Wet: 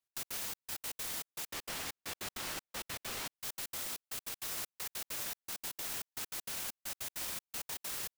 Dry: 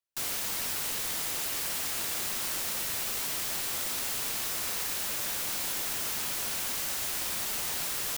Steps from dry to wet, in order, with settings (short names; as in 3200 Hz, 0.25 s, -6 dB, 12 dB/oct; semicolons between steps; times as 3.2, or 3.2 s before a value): 1.45–3.35 high shelf 5600 Hz -10 dB; limiter -30 dBFS, peak gain reduction 9.5 dB; step gate "x.x.xxx.." 197 bpm -60 dB